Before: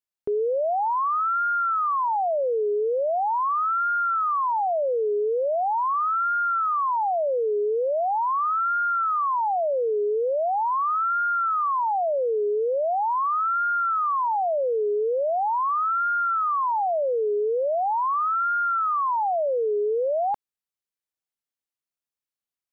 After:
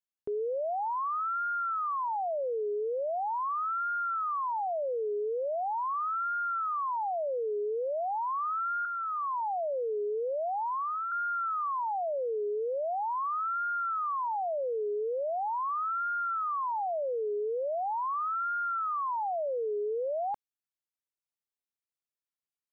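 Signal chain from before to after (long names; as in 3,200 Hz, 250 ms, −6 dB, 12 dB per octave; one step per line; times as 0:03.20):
0:08.85–0:11.12: low-pass filter 1,400 Hz 24 dB per octave
level −8 dB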